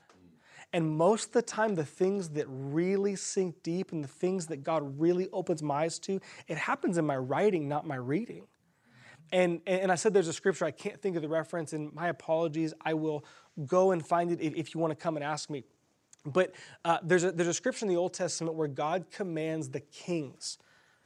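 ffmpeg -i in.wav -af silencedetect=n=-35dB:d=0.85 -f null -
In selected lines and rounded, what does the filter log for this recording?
silence_start: 8.31
silence_end: 9.32 | silence_duration: 1.01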